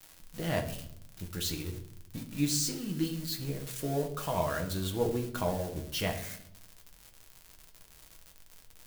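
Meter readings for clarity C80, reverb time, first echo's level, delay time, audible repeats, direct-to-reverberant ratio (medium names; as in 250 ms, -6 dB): 13.5 dB, 0.75 s, no echo, no echo, no echo, 2.0 dB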